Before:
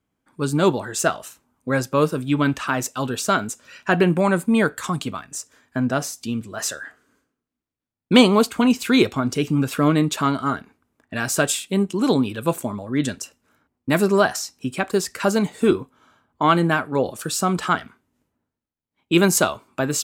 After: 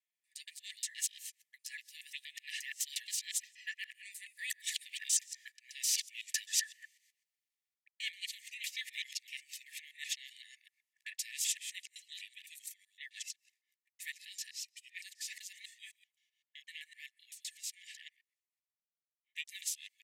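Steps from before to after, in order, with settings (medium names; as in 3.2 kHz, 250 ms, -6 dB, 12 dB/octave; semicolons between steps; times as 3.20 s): time reversed locally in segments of 123 ms; Doppler pass-by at 5.42 s, 13 m/s, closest 4.2 m; reverse; compression 8:1, threshold -44 dBFS, peak gain reduction 23.5 dB; reverse; harmony voices -12 st -15 dB, -4 st -9 dB; brick-wall FIR high-pass 1.7 kHz; trim +15.5 dB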